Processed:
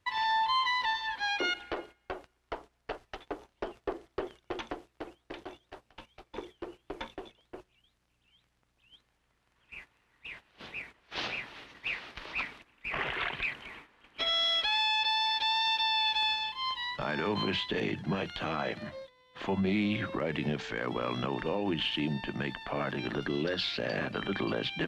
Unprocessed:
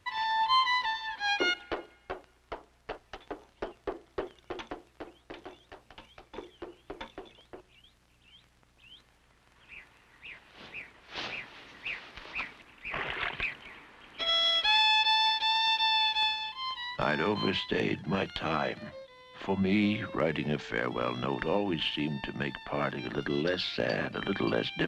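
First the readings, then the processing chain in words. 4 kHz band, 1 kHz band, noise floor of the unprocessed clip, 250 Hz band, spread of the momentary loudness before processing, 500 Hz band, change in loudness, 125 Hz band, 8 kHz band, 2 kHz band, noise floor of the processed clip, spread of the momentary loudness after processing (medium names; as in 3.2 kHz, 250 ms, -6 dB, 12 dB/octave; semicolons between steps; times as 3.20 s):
-2.0 dB, -2.0 dB, -65 dBFS, -1.5 dB, 21 LU, -2.0 dB, -2.0 dB, -0.5 dB, -1.5 dB, -1.5 dB, -75 dBFS, 19 LU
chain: peak limiter -24 dBFS, peak gain reduction 8 dB; gate -50 dBFS, range -12 dB; trim +2 dB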